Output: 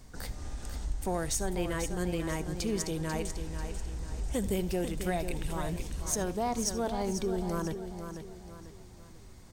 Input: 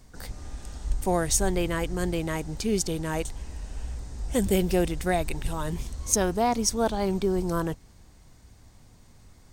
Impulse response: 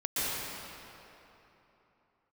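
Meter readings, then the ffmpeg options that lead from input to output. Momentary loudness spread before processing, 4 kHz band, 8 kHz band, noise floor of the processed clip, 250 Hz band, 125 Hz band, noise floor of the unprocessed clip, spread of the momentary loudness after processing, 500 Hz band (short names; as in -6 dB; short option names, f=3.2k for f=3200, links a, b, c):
15 LU, -6.0 dB, -6.5 dB, -51 dBFS, -5.5 dB, -4.5 dB, -54 dBFS, 14 LU, -6.5 dB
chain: -filter_complex "[0:a]acompressor=threshold=-34dB:ratio=2,asoftclip=type=tanh:threshold=-21dB,aecho=1:1:492|984|1476|1968:0.376|0.15|0.0601|0.0241,asplit=2[a][b];[1:a]atrim=start_sample=2205,afade=t=out:st=0.21:d=0.01,atrim=end_sample=9702,asetrate=79380,aresample=44100[c];[b][c]afir=irnorm=-1:irlink=0,volume=-14dB[d];[a][d]amix=inputs=2:normalize=0"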